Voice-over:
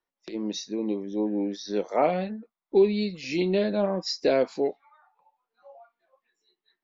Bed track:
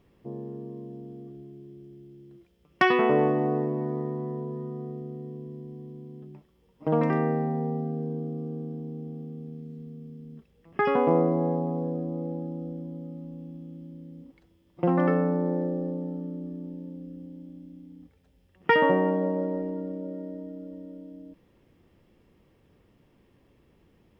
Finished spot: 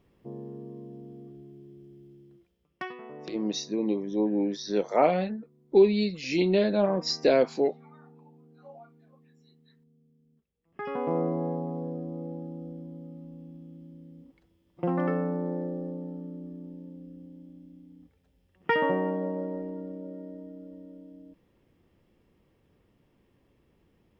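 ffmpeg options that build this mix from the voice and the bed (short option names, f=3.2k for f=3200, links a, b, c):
-filter_complex "[0:a]adelay=3000,volume=1dB[a];[1:a]volume=15dB,afade=t=out:st=2.11:d=0.84:silence=0.105925,afade=t=in:st=10.61:d=0.66:silence=0.125893[b];[a][b]amix=inputs=2:normalize=0"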